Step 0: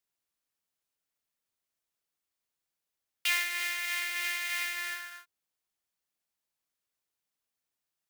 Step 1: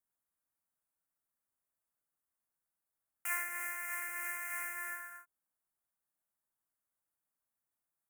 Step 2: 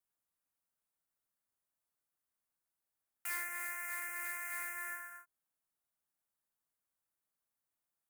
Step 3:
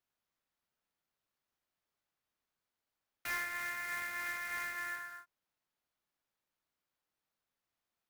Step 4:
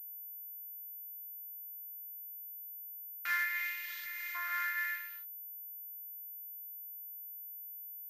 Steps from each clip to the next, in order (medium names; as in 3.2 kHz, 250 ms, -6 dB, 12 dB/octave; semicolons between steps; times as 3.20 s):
Chebyshev band-stop 1.5–9 kHz, order 2; peaking EQ 440 Hz -8 dB 0.27 oct; trim -1 dB
overload inside the chain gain 33 dB; trim -1 dB
median filter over 5 samples; trim +3.5 dB
LFO high-pass saw up 0.74 Hz 670–3800 Hz; spectral replace 3.86–4.33 s, 210–2000 Hz before; class-D stage that switches slowly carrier 14 kHz; trim -1 dB